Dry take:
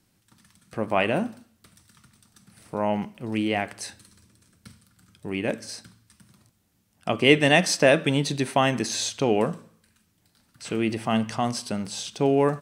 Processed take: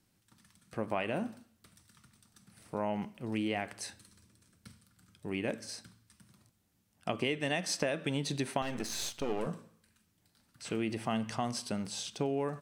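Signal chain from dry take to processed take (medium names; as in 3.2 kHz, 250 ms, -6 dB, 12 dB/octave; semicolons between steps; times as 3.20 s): 8.62–9.47 s: partial rectifier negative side -12 dB; compression 16:1, threshold -22 dBFS, peak gain reduction 12.5 dB; trim -6 dB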